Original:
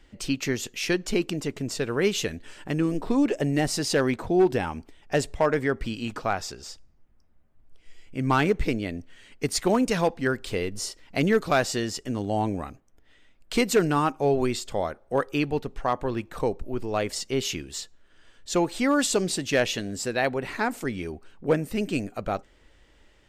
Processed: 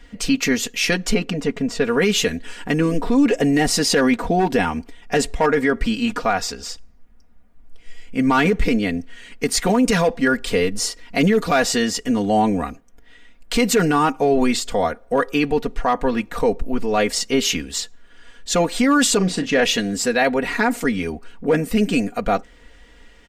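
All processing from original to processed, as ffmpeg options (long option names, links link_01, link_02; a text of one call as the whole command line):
ffmpeg -i in.wav -filter_complex "[0:a]asettb=1/sr,asplit=3[link_01][link_02][link_03];[link_01]atrim=end=1.144[link_04];[link_02]atrim=start=1.14:end=1.85,asetpts=PTS-STARTPTS,afade=type=in:duration=0.004:curve=qsin,afade=type=out:start_time=0.706:duration=0.004:curve=qsin,lowpass=frequency=2500:poles=1,bandreject=frequency=330:width=6.2[link_05];[link_03]atrim=start=1.846[link_06];[link_04][link_05]acrossfade=duration=0.004:curve1=hsin:curve2=qsin[link_07];[link_07][link_06]acrossfade=duration=0.004:curve1=qsin:curve2=hsin,asettb=1/sr,asplit=3[link_08][link_09][link_10];[link_08]atrim=end=19.174[link_11];[link_09]atrim=start=19.17:end=19.63,asetpts=PTS-STARTPTS,afade=type=in:duration=0.004:curve=qsin,afade=type=out:start_time=0.456:duration=0.004:curve=qsin,aemphasis=mode=reproduction:type=75kf,asplit=2[link_12][link_13];[link_13]adelay=38,volume=-10dB[link_14];[link_12][link_14]amix=inputs=2:normalize=0,atrim=end_sample=20286[link_15];[link_10]atrim=start=19.626[link_16];[link_11][link_15]acrossfade=duration=0.004:curve1=hsin:curve2=qsin[link_17];[link_17][link_16]acrossfade=duration=0.004:curve1=qsin:curve2=hsin,aecho=1:1:4.2:0.77,alimiter=limit=-16dB:level=0:latency=1:release=13,equalizer=frequency=1900:width_type=o:width=0.77:gain=2.5,volume=7dB" out.wav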